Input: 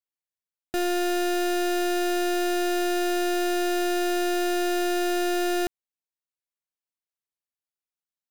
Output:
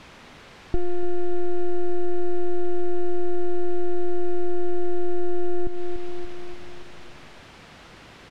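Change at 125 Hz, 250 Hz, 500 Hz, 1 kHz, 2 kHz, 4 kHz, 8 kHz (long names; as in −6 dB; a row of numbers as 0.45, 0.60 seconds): can't be measured, −1.5 dB, −2.0 dB, −9.0 dB, −14.5 dB, below −15 dB, below −20 dB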